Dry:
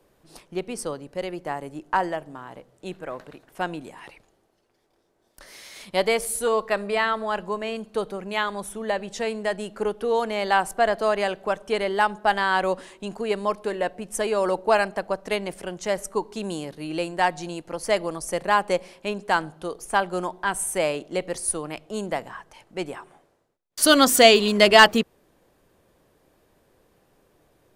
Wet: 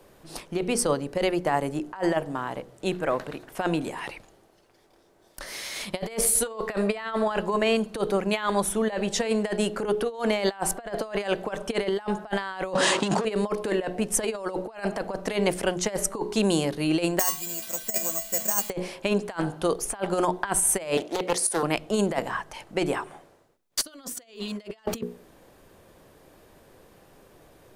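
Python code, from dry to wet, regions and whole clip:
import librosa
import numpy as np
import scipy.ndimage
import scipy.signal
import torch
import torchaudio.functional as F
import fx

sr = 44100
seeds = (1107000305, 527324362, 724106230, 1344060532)

y = fx.chain(x, sr, fx.leveller(passes=3),
    fx.cabinet(low_hz=150.0, low_slope=24, high_hz=8700.0, hz=(230.0, 370.0, 2200.0), db=(-7, -4, -6)),
    fx.env_flatten(amount_pct=50), at=(12.75, 13.25))
y = fx.chain(y, sr, fx.crossing_spikes(level_db=-18.5),
    fx.comb_fb(f0_hz=220.0, decay_s=0.27, harmonics='odd', damping=0.0, mix_pct=90),
    fx.resample_bad(factor=6, down='filtered', up='zero_stuff'), at=(17.19, 18.7))
y = fx.chain(y, sr, fx.highpass(hz=370.0, slope=12),
    fx.doppler_dist(depth_ms=0.42), at=(20.97, 21.63))
y = fx.hum_notches(y, sr, base_hz=60, count=8)
y = fx.over_compress(y, sr, threshold_db=-29.0, ratio=-0.5)
y = y * 10.0 ** (3.0 / 20.0)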